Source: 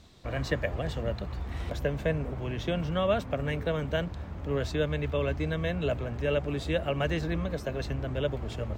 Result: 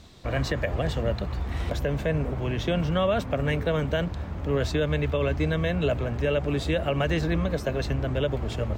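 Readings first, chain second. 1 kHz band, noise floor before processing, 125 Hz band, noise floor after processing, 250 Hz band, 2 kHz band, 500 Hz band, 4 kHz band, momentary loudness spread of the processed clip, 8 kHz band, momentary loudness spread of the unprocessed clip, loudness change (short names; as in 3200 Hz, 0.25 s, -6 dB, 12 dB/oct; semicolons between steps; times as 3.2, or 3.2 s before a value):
+4.0 dB, -40 dBFS, +5.0 dB, -34 dBFS, +5.0 dB, +3.5 dB, +3.5 dB, +4.0 dB, 4 LU, n/a, 6 LU, +4.0 dB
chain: limiter -20.5 dBFS, peak gain reduction 7.5 dB; gain +5.5 dB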